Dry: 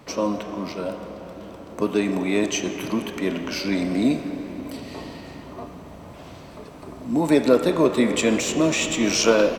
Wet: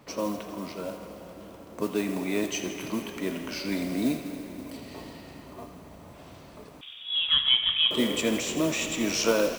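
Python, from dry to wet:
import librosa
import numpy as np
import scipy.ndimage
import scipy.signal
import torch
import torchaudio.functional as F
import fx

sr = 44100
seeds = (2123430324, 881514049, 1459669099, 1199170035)

y = fx.mod_noise(x, sr, seeds[0], snr_db=19)
y = fx.freq_invert(y, sr, carrier_hz=3600, at=(6.81, 7.91))
y = fx.echo_wet_highpass(y, sr, ms=82, feedback_pct=78, hz=1700.0, wet_db=-12.5)
y = F.gain(torch.from_numpy(y), -6.5).numpy()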